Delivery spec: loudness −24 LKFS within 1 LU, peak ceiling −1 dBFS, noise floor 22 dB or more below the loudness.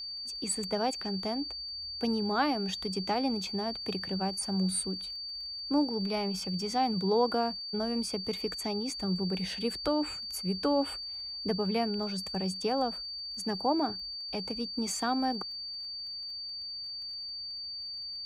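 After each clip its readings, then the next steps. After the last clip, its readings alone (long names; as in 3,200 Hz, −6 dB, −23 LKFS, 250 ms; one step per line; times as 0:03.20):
crackle rate 30 per second; interfering tone 4,600 Hz; level of the tone −37 dBFS; integrated loudness −32.0 LKFS; sample peak −15.0 dBFS; target loudness −24.0 LKFS
→ click removal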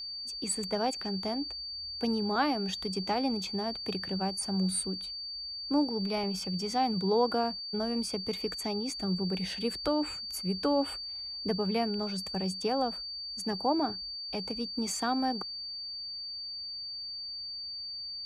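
crackle rate 0.11 per second; interfering tone 4,600 Hz; level of the tone −37 dBFS
→ notch filter 4,600 Hz, Q 30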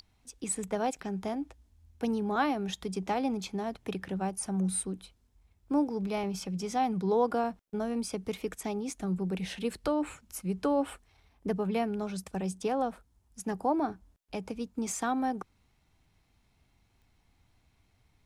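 interfering tone none found; integrated loudness −33.0 LKFS; sample peak −16.0 dBFS; target loudness −24.0 LKFS
→ level +9 dB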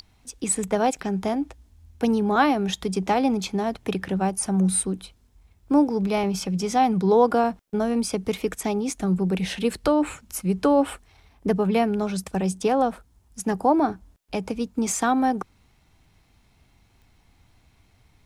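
integrated loudness −24.0 LKFS; sample peak −7.0 dBFS; background noise floor −61 dBFS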